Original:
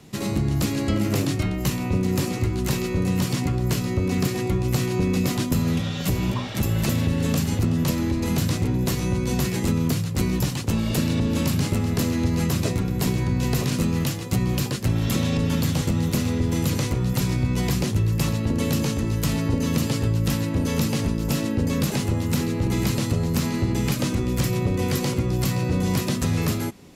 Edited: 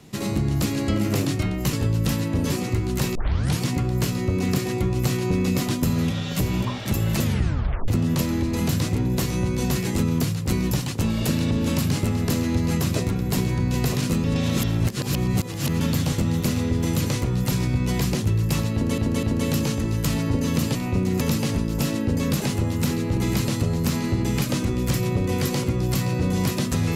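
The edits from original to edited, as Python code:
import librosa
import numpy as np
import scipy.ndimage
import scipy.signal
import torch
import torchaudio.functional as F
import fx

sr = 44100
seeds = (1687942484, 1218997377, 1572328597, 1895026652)

y = fx.edit(x, sr, fx.swap(start_s=1.73, length_s=0.46, other_s=19.94, other_length_s=0.77),
    fx.tape_start(start_s=2.84, length_s=0.45),
    fx.tape_stop(start_s=6.92, length_s=0.65),
    fx.reverse_span(start_s=13.93, length_s=1.56),
    fx.repeat(start_s=18.42, length_s=0.25, count=3), tone=tone)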